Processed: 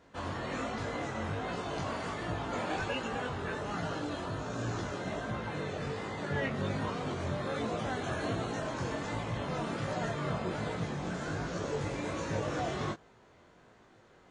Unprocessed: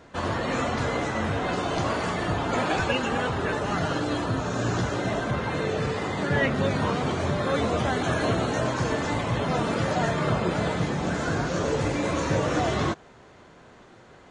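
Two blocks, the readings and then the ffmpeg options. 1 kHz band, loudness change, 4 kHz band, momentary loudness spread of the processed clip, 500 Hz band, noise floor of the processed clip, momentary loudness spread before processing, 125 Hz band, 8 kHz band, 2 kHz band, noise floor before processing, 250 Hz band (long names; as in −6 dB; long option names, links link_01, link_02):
−9.5 dB, −9.5 dB, −9.5 dB, 3 LU, −9.5 dB, −60 dBFS, 3 LU, −9.0 dB, −9.5 dB, −9.5 dB, −51 dBFS, −9.5 dB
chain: -af "flanger=delay=18:depth=4.1:speed=1.3,volume=-6.5dB"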